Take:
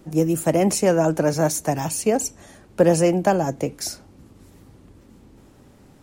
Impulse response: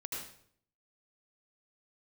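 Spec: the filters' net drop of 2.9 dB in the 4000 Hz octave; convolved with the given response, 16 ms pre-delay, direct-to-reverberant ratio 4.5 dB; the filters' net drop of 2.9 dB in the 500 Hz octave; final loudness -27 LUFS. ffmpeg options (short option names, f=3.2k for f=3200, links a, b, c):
-filter_complex "[0:a]equalizer=f=500:t=o:g=-3.5,equalizer=f=4k:t=o:g=-4.5,asplit=2[a][b];[1:a]atrim=start_sample=2205,adelay=16[c];[b][c]afir=irnorm=-1:irlink=0,volume=-5dB[d];[a][d]amix=inputs=2:normalize=0,volume=-5.5dB"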